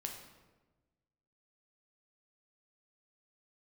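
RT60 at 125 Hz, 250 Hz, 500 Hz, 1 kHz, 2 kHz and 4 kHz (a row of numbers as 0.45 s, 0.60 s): 1.7 s, 1.5 s, 1.3 s, 1.1 s, 0.95 s, 0.80 s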